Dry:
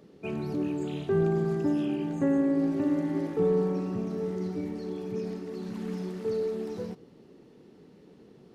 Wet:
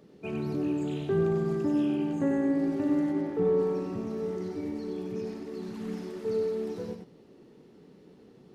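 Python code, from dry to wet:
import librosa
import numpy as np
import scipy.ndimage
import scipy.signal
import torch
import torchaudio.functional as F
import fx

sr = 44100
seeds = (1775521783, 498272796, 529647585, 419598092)

y = fx.high_shelf(x, sr, hz=fx.line((3.11, 3600.0), (3.58, 4500.0)), db=-9.5, at=(3.11, 3.58), fade=0.02)
y = y + 10.0 ** (-5.5 / 20.0) * np.pad(y, (int(95 * sr / 1000.0), 0))[:len(y)]
y = F.gain(torch.from_numpy(y), -1.5).numpy()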